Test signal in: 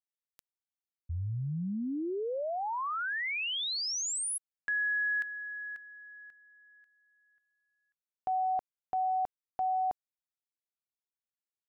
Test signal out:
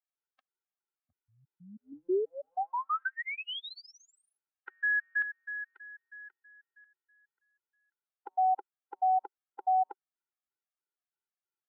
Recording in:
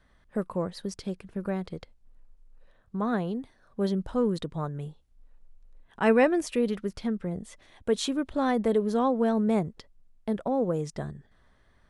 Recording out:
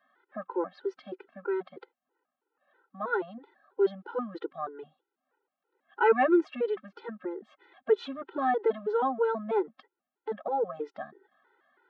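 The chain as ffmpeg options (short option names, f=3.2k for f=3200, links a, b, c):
-af "highpass=f=310:w=0.5412,highpass=f=310:w=1.3066,equalizer=f=380:t=q:w=4:g=9,equalizer=f=570:t=q:w=4:g=-4,equalizer=f=810:t=q:w=4:g=7,equalizer=f=1.4k:t=q:w=4:g=10,equalizer=f=2.4k:t=q:w=4:g=-3,lowpass=f=3.2k:w=0.5412,lowpass=f=3.2k:w=1.3066,afftfilt=real='re*gt(sin(2*PI*3.1*pts/sr)*(1-2*mod(floor(b*sr/1024/260),2)),0)':imag='im*gt(sin(2*PI*3.1*pts/sr)*(1-2*mod(floor(b*sr/1024/260),2)),0)':win_size=1024:overlap=0.75"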